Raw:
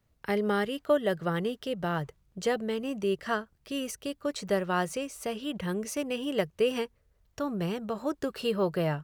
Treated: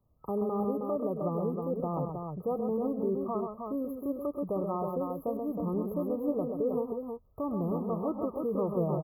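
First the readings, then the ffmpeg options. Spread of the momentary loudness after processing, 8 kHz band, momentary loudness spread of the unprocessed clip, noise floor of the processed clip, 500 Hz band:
5 LU, under -25 dB, 7 LU, -58 dBFS, -1.5 dB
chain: -filter_complex "[0:a]afftfilt=real='re*(1-between(b*sr/4096,1300,11000))':imag='im*(1-between(b*sr/4096,1300,11000))':win_size=4096:overlap=0.75,highshelf=f=6.8k:g=-4.5,alimiter=limit=-24dB:level=0:latency=1:release=58,asplit=2[a][b];[b]aecho=0:1:102|132|315:0.2|0.501|0.562[c];[a][c]amix=inputs=2:normalize=0,adynamicequalizer=threshold=0.00316:dfrequency=2100:dqfactor=0.7:tfrequency=2100:tqfactor=0.7:attack=5:release=100:ratio=0.375:range=2.5:mode=cutabove:tftype=highshelf"

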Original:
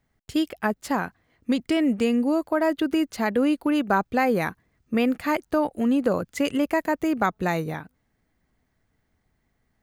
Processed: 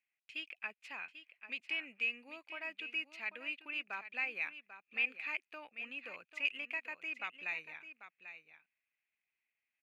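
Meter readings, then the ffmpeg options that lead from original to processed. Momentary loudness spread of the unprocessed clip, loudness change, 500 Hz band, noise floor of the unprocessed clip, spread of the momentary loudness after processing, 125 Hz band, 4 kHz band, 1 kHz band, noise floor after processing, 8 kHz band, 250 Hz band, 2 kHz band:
6 LU, -15.5 dB, -30.0 dB, -72 dBFS, 14 LU, under -35 dB, -8.5 dB, -24.0 dB, under -85 dBFS, under -25 dB, -36.0 dB, -6.0 dB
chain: -af "bandpass=f=2.5k:t=q:w=14:csg=0,aecho=1:1:792:0.266,volume=5.5dB"

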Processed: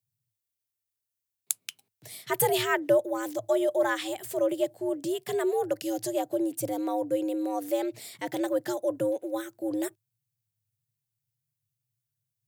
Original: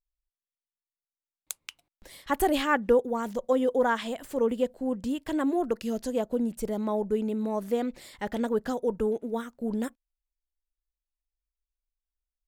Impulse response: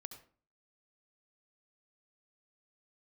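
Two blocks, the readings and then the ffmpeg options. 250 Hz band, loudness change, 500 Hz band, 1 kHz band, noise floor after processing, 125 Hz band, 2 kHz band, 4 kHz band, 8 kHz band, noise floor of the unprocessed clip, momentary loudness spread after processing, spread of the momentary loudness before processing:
-2.0 dB, -0.5 dB, +0.5 dB, -2.0 dB, under -85 dBFS, -1.0 dB, 0.0 dB, +3.0 dB, +7.5 dB, under -85 dBFS, 9 LU, 10 LU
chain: -af "afreqshift=98,crystalizer=i=1.5:c=0,equalizer=f=1.1k:w=2.1:g=-6.5"

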